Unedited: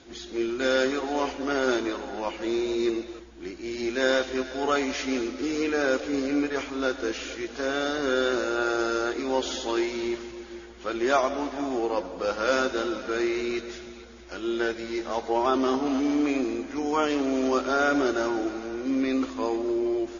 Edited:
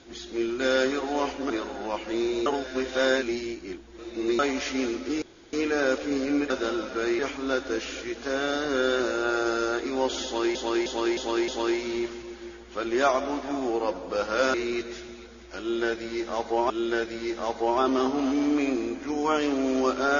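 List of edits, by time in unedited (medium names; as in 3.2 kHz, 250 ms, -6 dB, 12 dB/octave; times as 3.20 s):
1.50–1.83 s: delete
2.79–4.72 s: reverse
5.55 s: insert room tone 0.31 s
9.57–9.88 s: loop, 5 plays
12.63–13.32 s: move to 6.52 s
14.38–15.48 s: loop, 2 plays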